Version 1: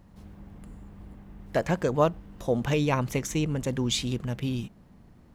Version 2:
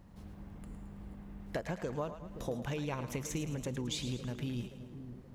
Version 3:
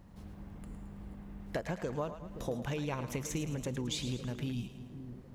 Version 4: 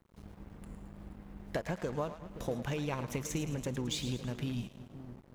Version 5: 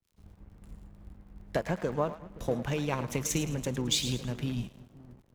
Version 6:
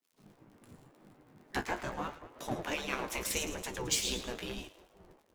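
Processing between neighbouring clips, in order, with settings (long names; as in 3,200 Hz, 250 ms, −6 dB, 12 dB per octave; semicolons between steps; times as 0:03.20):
downward compressor 6 to 1, threshold −32 dBFS, peak gain reduction 14.5 dB; on a send: echo with a time of its own for lows and highs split 550 Hz, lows 525 ms, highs 109 ms, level −10 dB; on the sum: level −2.5 dB
healed spectral selection 0:04.54–0:05.01, 330–2,200 Hz after; level +1 dB
dead-zone distortion −52.5 dBFS; level +1.5 dB
surface crackle 42 per second −46 dBFS; multiband upward and downward expander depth 70%; level +4 dB
flanger 0.81 Hz, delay 9.8 ms, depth 8.2 ms, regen +38%; gate on every frequency bin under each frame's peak −10 dB weak; level +6.5 dB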